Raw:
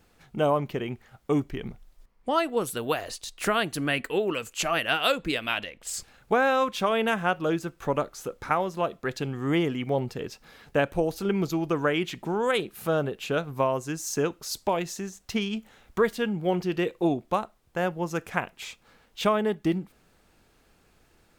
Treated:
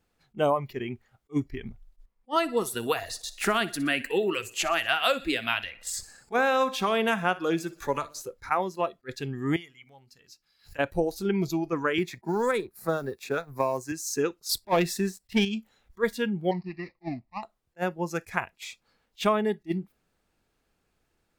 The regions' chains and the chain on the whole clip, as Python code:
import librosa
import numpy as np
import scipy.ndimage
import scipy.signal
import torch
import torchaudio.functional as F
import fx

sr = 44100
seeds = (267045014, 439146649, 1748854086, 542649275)

y = fx.chain(x, sr, fx.echo_feedback(ms=61, feedback_pct=59, wet_db=-17.0),
    fx.band_squash(depth_pct=40), at=(2.36, 8.22))
y = fx.chain(y, sr, fx.tone_stack(knobs='5-5-5'),
    fx.hum_notches(base_hz=50, count=8),
    fx.pre_swell(db_per_s=120.0), at=(9.56, 10.79))
y = fx.chain(y, sr, fx.law_mismatch(coded='A'),
    fx.peak_eq(hz=3000.0, db=-11.5, octaves=0.37),
    fx.band_squash(depth_pct=70), at=(11.98, 13.92))
y = fx.chain(y, sr, fx.peak_eq(hz=6400.0, db=-10.5, octaves=0.28),
    fx.leveller(passes=2), at=(14.49, 15.45))
y = fx.chain(y, sr, fx.dead_time(dead_ms=0.2),
    fx.air_absorb(metres=230.0),
    fx.fixed_phaser(hz=2200.0, stages=8), at=(16.51, 17.43))
y = fx.noise_reduce_blind(y, sr, reduce_db=12)
y = fx.attack_slew(y, sr, db_per_s=530.0)